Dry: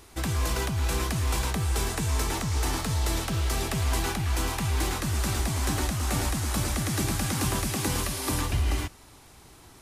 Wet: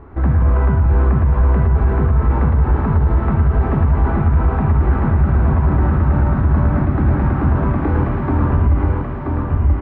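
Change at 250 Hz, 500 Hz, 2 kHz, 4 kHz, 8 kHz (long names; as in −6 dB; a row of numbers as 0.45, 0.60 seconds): +12.5 dB, +10.5 dB, +3.0 dB, below −15 dB, below −40 dB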